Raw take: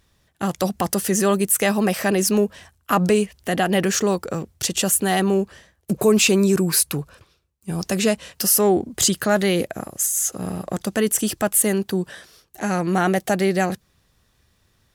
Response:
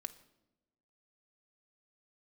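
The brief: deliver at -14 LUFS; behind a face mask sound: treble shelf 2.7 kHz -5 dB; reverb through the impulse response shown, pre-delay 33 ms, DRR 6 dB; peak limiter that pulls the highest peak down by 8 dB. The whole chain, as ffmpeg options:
-filter_complex "[0:a]alimiter=limit=0.188:level=0:latency=1,asplit=2[s0][s1];[1:a]atrim=start_sample=2205,adelay=33[s2];[s1][s2]afir=irnorm=-1:irlink=0,volume=0.708[s3];[s0][s3]amix=inputs=2:normalize=0,highshelf=f=2700:g=-5,volume=3.35"

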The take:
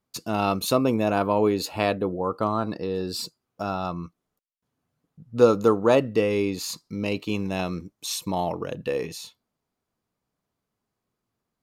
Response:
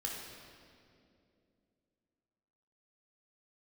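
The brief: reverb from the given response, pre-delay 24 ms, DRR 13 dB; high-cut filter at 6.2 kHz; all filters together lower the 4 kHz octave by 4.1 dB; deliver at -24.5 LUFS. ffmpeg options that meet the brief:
-filter_complex "[0:a]lowpass=6200,equalizer=f=4000:t=o:g=-4,asplit=2[s0][s1];[1:a]atrim=start_sample=2205,adelay=24[s2];[s1][s2]afir=irnorm=-1:irlink=0,volume=0.188[s3];[s0][s3]amix=inputs=2:normalize=0,volume=1.06"

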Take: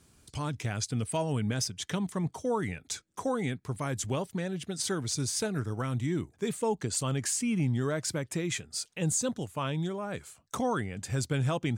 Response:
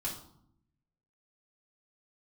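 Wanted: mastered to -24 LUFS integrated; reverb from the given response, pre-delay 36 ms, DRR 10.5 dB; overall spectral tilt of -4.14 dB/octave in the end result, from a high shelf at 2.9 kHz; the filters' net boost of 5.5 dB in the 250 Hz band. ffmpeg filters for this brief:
-filter_complex "[0:a]equalizer=f=250:t=o:g=7,highshelf=f=2900:g=8,asplit=2[s0][s1];[1:a]atrim=start_sample=2205,adelay=36[s2];[s1][s2]afir=irnorm=-1:irlink=0,volume=0.237[s3];[s0][s3]amix=inputs=2:normalize=0,volume=1.41"

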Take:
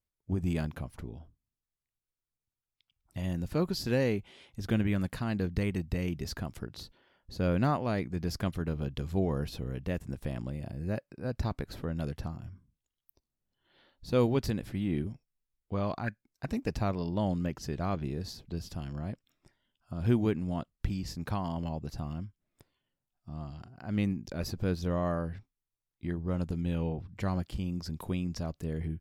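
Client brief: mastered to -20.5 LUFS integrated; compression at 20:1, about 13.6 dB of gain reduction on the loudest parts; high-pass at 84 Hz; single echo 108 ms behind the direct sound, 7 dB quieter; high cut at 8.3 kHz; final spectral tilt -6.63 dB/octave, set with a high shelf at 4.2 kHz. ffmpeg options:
-af "highpass=84,lowpass=8300,highshelf=f=4200:g=-3,acompressor=threshold=0.02:ratio=20,aecho=1:1:108:0.447,volume=10"

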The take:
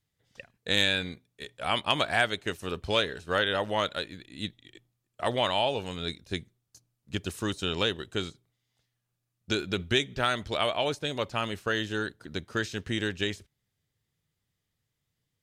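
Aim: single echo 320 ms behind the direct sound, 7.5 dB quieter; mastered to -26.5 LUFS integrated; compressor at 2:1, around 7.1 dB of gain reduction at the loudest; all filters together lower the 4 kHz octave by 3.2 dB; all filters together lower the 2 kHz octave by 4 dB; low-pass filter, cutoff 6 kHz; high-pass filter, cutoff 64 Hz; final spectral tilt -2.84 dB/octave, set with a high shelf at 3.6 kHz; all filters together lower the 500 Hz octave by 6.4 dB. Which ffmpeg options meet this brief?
-af "highpass=64,lowpass=6000,equalizer=f=500:t=o:g=-8,equalizer=f=2000:t=o:g=-5,highshelf=f=3600:g=5,equalizer=f=4000:t=o:g=-4.5,acompressor=threshold=0.0158:ratio=2,aecho=1:1:320:0.422,volume=3.76"

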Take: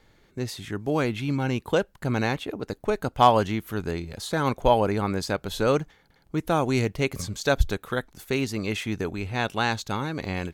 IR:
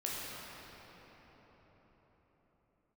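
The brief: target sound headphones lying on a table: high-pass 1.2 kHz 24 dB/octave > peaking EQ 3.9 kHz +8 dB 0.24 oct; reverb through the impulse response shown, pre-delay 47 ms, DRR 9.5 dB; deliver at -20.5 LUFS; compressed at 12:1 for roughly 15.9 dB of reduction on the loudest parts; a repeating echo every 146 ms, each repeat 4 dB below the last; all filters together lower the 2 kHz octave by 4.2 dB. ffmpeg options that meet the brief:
-filter_complex "[0:a]equalizer=f=2000:t=o:g=-5.5,acompressor=threshold=0.0355:ratio=12,aecho=1:1:146|292|438|584|730|876|1022|1168|1314:0.631|0.398|0.25|0.158|0.0994|0.0626|0.0394|0.0249|0.0157,asplit=2[s0][s1];[1:a]atrim=start_sample=2205,adelay=47[s2];[s1][s2]afir=irnorm=-1:irlink=0,volume=0.211[s3];[s0][s3]amix=inputs=2:normalize=0,highpass=f=1200:w=0.5412,highpass=f=1200:w=1.3066,equalizer=f=3900:t=o:w=0.24:g=8,volume=7.94"

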